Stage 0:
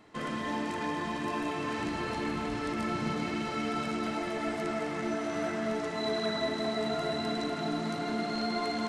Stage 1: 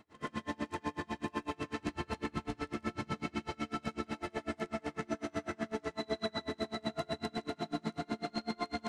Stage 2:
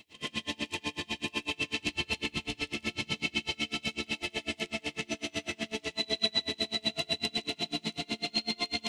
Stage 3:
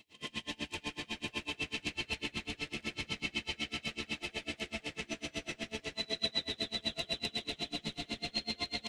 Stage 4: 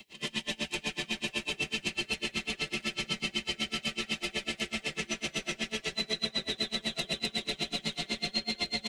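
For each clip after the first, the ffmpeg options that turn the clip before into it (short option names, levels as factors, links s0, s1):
-af "equalizer=f=76:w=1.9:g=10,aeval=exprs='val(0)*pow(10,-33*(0.5-0.5*cos(2*PI*8*n/s))/20)':c=same"
-af "highshelf=f=2000:t=q:w=3:g=11"
-filter_complex "[0:a]asplit=8[s0][s1][s2][s3][s4][s5][s6][s7];[s1]adelay=132,afreqshift=-140,volume=0.316[s8];[s2]adelay=264,afreqshift=-280,volume=0.193[s9];[s3]adelay=396,afreqshift=-420,volume=0.117[s10];[s4]adelay=528,afreqshift=-560,volume=0.0716[s11];[s5]adelay=660,afreqshift=-700,volume=0.0437[s12];[s6]adelay=792,afreqshift=-840,volume=0.0266[s13];[s7]adelay=924,afreqshift=-980,volume=0.0162[s14];[s0][s8][s9][s10][s11][s12][s13][s14]amix=inputs=8:normalize=0,volume=0.531"
-filter_complex "[0:a]aecho=1:1:5.2:0.68,acrossover=split=150|580|2500|5400[s0][s1][s2][s3][s4];[s0]acompressor=threshold=0.00141:ratio=4[s5];[s1]acompressor=threshold=0.00447:ratio=4[s6];[s2]acompressor=threshold=0.00501:ratio=4[s7];[s3]acompressor=threshold=0.00562:ratio=4[s8];[s4]acompressor=threshold=0.00398:ratio=4[s9];[s5][s6][s7][s8][s9]amix=inputs=5:normalize=0,volume=2.51"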